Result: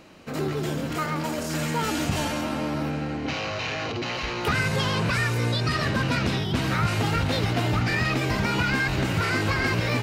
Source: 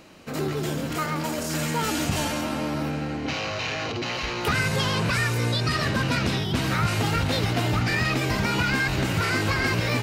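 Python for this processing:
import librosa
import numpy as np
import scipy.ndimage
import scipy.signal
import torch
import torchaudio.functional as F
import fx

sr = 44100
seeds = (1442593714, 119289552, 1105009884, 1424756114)

y = fx.high_shelf(x, sr, hz=5300.0, db=-5.0)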